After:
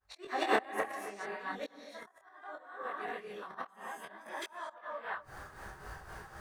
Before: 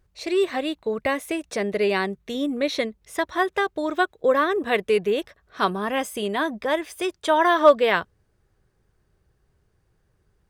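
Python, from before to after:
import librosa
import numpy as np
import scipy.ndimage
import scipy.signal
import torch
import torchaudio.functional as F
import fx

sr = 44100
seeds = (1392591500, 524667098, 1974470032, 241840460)

p1 = fx.fade_in_head(x, sr, length_s=0.97)
p2 = fx.over_compress(p1, sr, threshold_db=-32.0, ratio=-1.0)
p3 = p1 + F.gain(torch.from_numpy(p2), -1.5).numpy()
p4 = fx.rev_gated(p3, sr, seeds[0], gate_ms=490, shape='rising', drr_db=-5.0)
p5 = fx.stretch_vocoder(p4, sr, factor=0.61)
p6 = fx.gate_flip(p5, sr, shuts_db=-10.0, range_db=-33)
p7 = fx.band_shelf(p6, sr, hz=1100.0, db=10.0, octaves=1.7)
p8 = p7 * (1.0 - 0.64 / 2.0 + 0.64 / 2.0 * np.cos(2.0 * np.pi * 3.9 * (np.arange(len(p7)) / sr)))
p9 = fx.auto_swell(p8, sr, attack_ms=389.0)
p10 = fx.low_shelf(p9, sr, hz=330.0, db=-8.5)
p11 = p10 + fx.echo_bbd(p10, sr, ms=262, stages=4096, feedback_pct=47, wet_db=-23.5, dry=0)
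p12 = fx.auto_swell(p11, sr, attack_ms=374.0)
p13 = fx.detune_double(p12, sr, cents=23)
y = F.gain(torch.from_numpy(p13), 12.5).numpy()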